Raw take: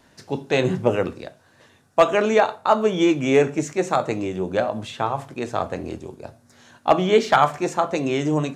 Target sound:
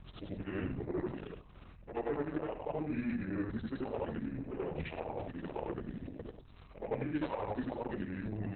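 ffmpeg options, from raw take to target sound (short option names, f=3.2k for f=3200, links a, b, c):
-af "afftfilt=real='re':imag='-im':win_size=8192:overlap=0.75,areverse,acompressor=threshold=-34dB:ratio=4,areverse,aeval=exprs='val(0)+0.00316*(sin(2*PI*60*n/s)+sin(2*PI*2*60*n/s)/2+sin(2*PI*3*60*n/s)/3+sin(2*PI*4*60*n/s)/4+sin(2*PI*5*60*n/s)/5)':c=same,asetrate=31183,aresample=44100,atempo=1.41421" -ar 48000 -c:a libopus -b:a 6k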